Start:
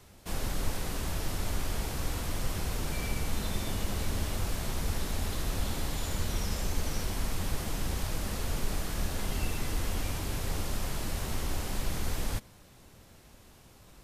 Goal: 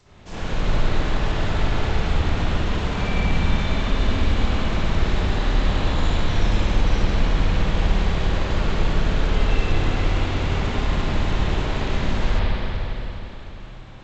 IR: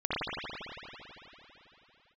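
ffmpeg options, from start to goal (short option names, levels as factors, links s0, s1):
-filter_complex "[1:a]atrim=start_sample=2205[s0];[0:a][s0]afir=irnorm=-1:irlink=0" -ar 16000 -c:a g722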